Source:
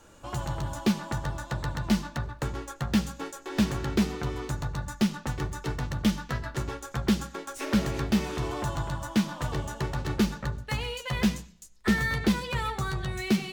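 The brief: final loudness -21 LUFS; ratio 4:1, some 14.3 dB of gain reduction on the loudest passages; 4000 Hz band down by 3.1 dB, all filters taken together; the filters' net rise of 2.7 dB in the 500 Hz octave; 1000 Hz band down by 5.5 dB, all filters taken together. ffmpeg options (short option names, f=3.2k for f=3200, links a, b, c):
-af "equalizer=f=500:t=o:g=5.5,equalizer=f=1k:t=o:g=-8.5,equalizer=f=4k:t=o:g=-3.5,acompressor=threshold=-36dB:ratio=4,volume=19dB"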